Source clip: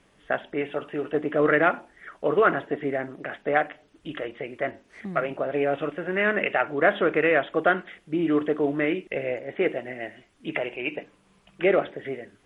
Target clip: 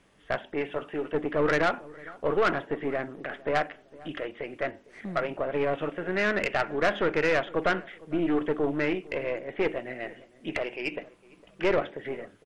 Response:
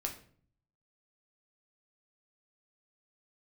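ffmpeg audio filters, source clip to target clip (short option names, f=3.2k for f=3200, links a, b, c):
-filter_complex "[0:a]aeval=exprs='(tanh(7.94*val(0)+0.45)-tanh(0.45))/7.94':c=same,asplit=2[a][b];[b]adelay=456,lowpass=f=1.2k:p=1,volume=-20.5dB,asplit=2[c][d];[d]adelay=456,lowpass=f=1.2k:p=1,volume=0.34,asplit=2[e][f];[f]adelay=456,lowpass=f=1.2k:p=1,volume=0.34[g];[a][c][e][g]amix=inputs=4:normalize=0"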